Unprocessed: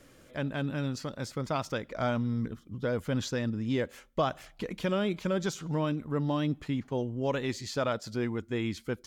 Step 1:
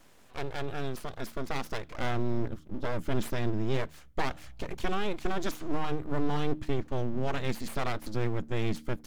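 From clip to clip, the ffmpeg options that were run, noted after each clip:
ffmpeg -i in.wav -af "asubboost=boost=5:cutoff=170,aeval=exprs='abs(val(0))':channel_layout=same,bandreject=frequency=76.39:width_type=h:width=4,bandreject=frequency=152.78:width_type=h:width=4,bandreject=frequency=229.17:width_type=h:width=4,bandreject=frequency=305.56:width_type=h:width=4" out.wav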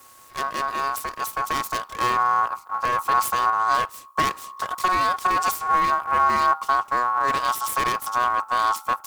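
ffmpeg -i in.wav -filter_complex "[0:a]aeval=exprs='val(0)*sin(2*PI*1100*n/s)':channel_layout=same,acrossover=split=3900[link_01][link_02];[link_02]crystalizer=i=2.5:c=0[link_03];[link_01][link_03]amix=inputs=2:normalize=0,volume=8dB" out.wav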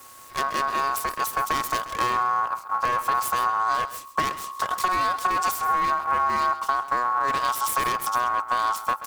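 ffmpeg -i in.wav -af "acompressor=threshold=-23dB:ratio=6,aecho=1:1:132:0.188,volume=3dB" out.wav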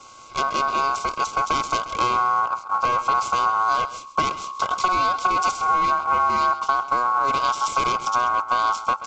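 ffmpeg -i in.wav -af "asuperstop=centerf=1800:order=12:qfactor=4.2,volume=3dB" -ar 16000 -c:a pcm_alaw out.wav

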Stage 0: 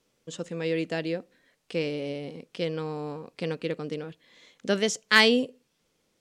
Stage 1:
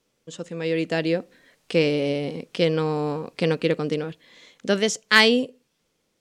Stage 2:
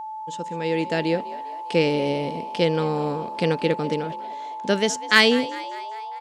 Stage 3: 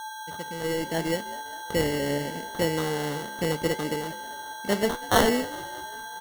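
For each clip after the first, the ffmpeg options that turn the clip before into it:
ffmpeg -i in.wav -af "dynaudnorm=framelen=260:gausssize=7:maxgain=9dB" out.wav
ffmpeg -i in.wav -filter_complex "[0:a]aeval=exprs='val(0)+0.0282*sin(2*PI*870*n/s)':channel_layout=same,asplit=6[link_01][link_02][link_03][link_04][link_05][link_06];[link_02]adelay=200,afreqshift=59,volume=-18dB[link_07];[link_03]adelay=400,afreqshift=118,volume=-22.6dB[link_08];[link_04]adelay=600,afreqshift=177,volume=-27.2dB[link_09];[link_05]adelay=800,afreqshift=236,volume=-31.7dB[link_10];[link_06]adelay=1000,afreqshift=295,volume=-36.3dB[link_11];[link_01][link_07][link_08][link_09][link_10][link_11]amix=inputs=6:normalize=0" out.wav
ffmpeg -i in.wav -af "acrusher=samples=18:mix=1:aa=0.000001,flanger=delay=9.1:depth=5.5:regen=74:speed=0.75:shape=sinusoidal" out.wav

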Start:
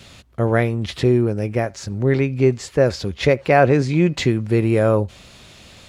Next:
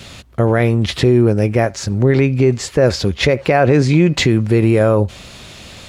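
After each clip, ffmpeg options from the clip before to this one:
ffmpeg -i in.wav -af "alimiter=limit=-12dB:level=0:latency=1:release=53,volume=8dB" out.wav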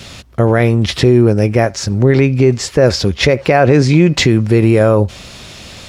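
ffmpeg -i in.wav -af "equalizer=frequency=5400:width_type=o:width=0.28:gain=4.5,volume=2.5dB" out.wav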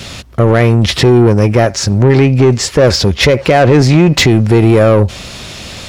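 ffmpeg -i in.wav -af "acontrast=79,volume=-1dB" out.wav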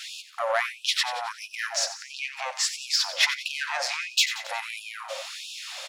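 ffmpeg -i in.wav -filter_complex "[0:a]asplit=2[link_01][link_02];[link_02]aecho=0:1:90|180|270|360|450|540:0.237|0.13|0.0717|0.0395|0.0217|0.0119[link_03];[link_01][link_03]amix=inputs=2:normalize=0,afftfilt=real='re*gte(b*sr/1024,500*pow(2500/500,0.5+0.5*sin(2*PI*1.5*pts/sr)))':imag='im*gte(b*sr/1024,500*pow(2500/500,0.5+0.5*sin(2*PI*1.5*pts/sr)))':win_size=1024:overlap=0.75,volume=-8.5dB" out.wav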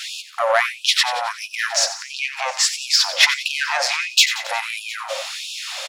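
ffmpeg -i in.wav -af "aecho=1:1:711:0.075,volume=8dB" out.wav

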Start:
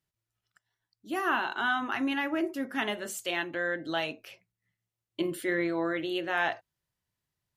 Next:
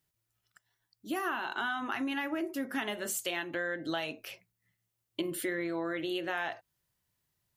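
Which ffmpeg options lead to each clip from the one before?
ffmpeg -i in.wav -af "highshelf=frequency=9800:gain=8.5,acompressor=threshold=-34dB:ratio=6,volume=3dB" out.wav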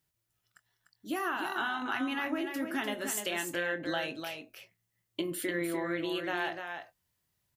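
ffmpeg -i in.wav -filter_complex "[0:a]asplit=2[link_01][link_02];[link_02]adelay=23,volume=-12dB[link_03];[link_01][link_03]amix=inputs=2:normalize=0,aecho=1:1:298:0.473" out.wav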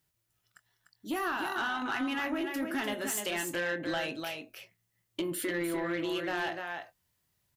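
ffmpeg -i in.wav -af "asoftclip=type=tanh:threshold=-28dB,volume=2.5dB" out.wav

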